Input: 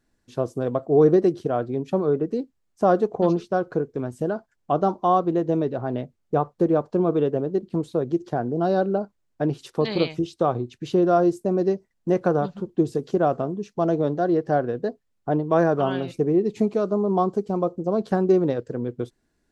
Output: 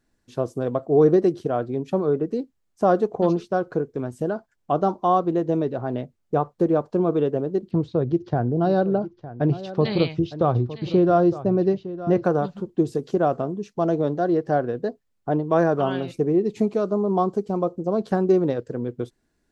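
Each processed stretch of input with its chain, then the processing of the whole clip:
7.71–12.24 LPF 5100 Hz 24 dB/oct + bell 100 Hz +12 dB 1.2 oct + echo 0.91 s -14.5 dB
whole clip: dry

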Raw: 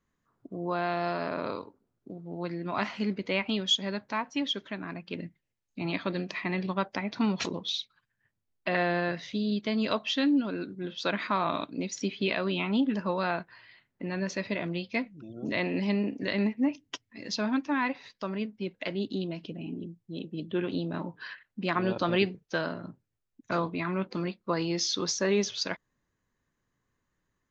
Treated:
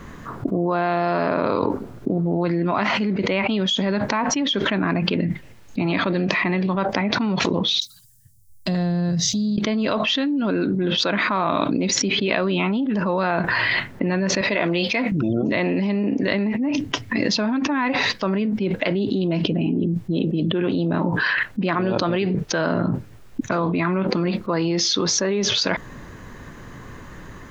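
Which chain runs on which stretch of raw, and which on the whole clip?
7.8–9.58 EQ curve 160 Hz 0 dB, 320 Hz -15 dB, 680 Hz -20 dB, 2400 Hz -25 dB, 3500 Hz -12 dB, 5100 Hz +2 dB, 9200 Hz +15 dB + compressor 2.5:1, threshold -58 dBFS + three-band expander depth 70%
14.41–15.12 HPF 240 Hz 6 dB/oct + low shelf 340 Hz -8.5 dB
whole clip: high shelf 3500 Hz -10.5 dB; fast leveller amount 100%; gain +1 dB

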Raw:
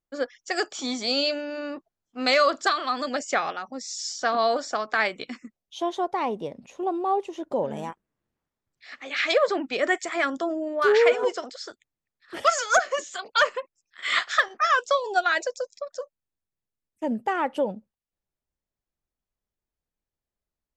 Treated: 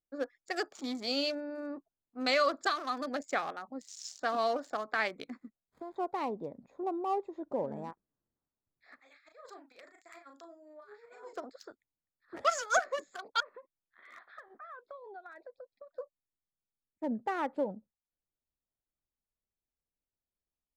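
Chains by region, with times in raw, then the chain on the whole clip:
5.36–5.96 switching dead time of 0.14 ms + compressor 4:1, threshold -32 dBFS
9–11.33 differentiator + negative-ratio compressor -42 dBFS, ratio -0.5 + doubler 36 ms -6 dB
13.4–15.98 compressor 3:1, threshold -41 dBFS + steep low-pass 3900 Hz
whole clip: Wiener smoothing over 15 samples; bell 280 Hz +3.5 dB 0.21 oct; gain -7.5 dB

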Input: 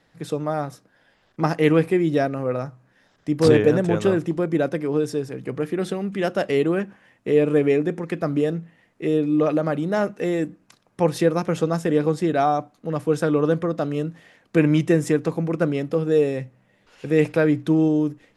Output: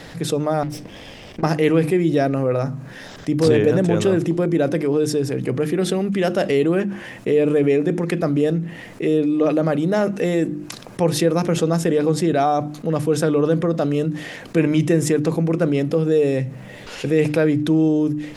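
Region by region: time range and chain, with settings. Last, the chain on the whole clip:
0.63–1.43 minimum comb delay 0.36 ms + high shelf 5900 Hz -6.5 dB + compressor 12:1, threshold -40 dBFS
whole clip: bell 1200 Hz -4.5 dB 1.7 oct; notches 50/100/150/200/250/300/350 Hz; fast leveller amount 50%

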